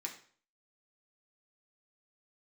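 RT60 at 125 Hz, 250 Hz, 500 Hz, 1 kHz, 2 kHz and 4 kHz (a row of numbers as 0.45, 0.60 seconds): 0.50, 0.45, 0.50, 0.45, 0.45, 0.45 seconds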